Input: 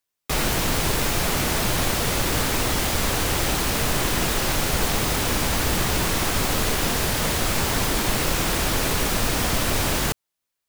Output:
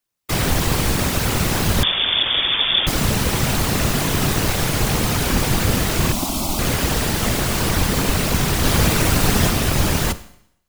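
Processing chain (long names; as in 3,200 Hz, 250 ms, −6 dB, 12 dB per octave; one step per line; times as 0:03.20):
sub-octave generator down 1 octave, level +4 dB
0:08.63–0:09.50: comb filter 7.3 ms, depth 92%
random phases in short frames
0:06.12–0:06.59: phaser with its sweep stopped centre 460 Hz, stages 6
convolution reverb RT60 0.70 s, pre-delay 32 ms, DRR 15 dB
0:01.83–0:02.87: voice inversion scrambler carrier 3,500 Hz
level +1.5 dB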